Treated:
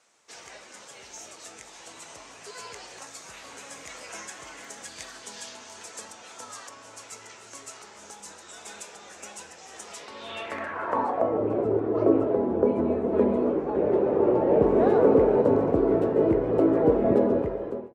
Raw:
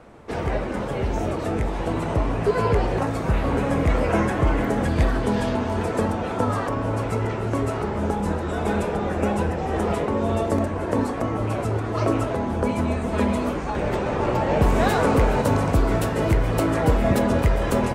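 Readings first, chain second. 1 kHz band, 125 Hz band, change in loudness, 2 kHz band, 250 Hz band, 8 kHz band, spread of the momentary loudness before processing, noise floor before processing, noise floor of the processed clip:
-7.5 dB, -14.5 dB, 0.0 dB, -11.0 dB, -3.5 dB, -0.5 dB, 6 LU, -28 dBFS, -48 dBFS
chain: ending faded out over 0.77 s; band-pass sweep 6600 Hz -> 400 Hz, 9.92–11.48; gain +6.5 dB

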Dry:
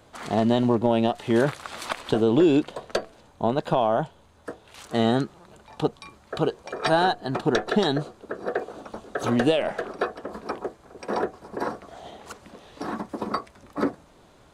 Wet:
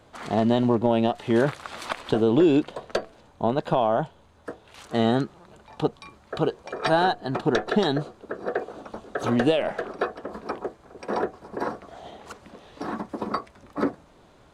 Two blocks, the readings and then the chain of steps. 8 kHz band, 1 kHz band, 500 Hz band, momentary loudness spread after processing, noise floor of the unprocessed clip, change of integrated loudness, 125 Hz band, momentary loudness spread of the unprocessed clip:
n/a, 0.0 dB, 0.0 dB, 18 LU, -55 dBFS, 0.0 dB, 0.0 dB, 18 LU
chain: high shelf 6200 Hz -6.5 dB

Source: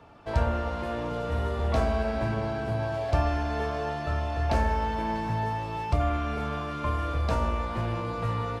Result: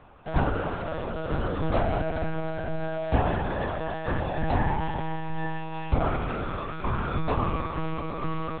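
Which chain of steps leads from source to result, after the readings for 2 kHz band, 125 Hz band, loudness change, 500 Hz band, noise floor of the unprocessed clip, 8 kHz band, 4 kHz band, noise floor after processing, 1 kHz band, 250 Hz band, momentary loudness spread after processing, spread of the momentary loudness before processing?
+1.0 dB, -1.5 dB, -0.5 dB, 0.0 dB, -34 dBFS, n/a, -1.5 dB, -34 dBFS, 0.0 dB, +2.0 dB, 6 LU, 5 LU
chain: bell 88 Hz +6.5 dB 0.21 oct; monotone LPC vocoder at 8 kHz 160 Hz

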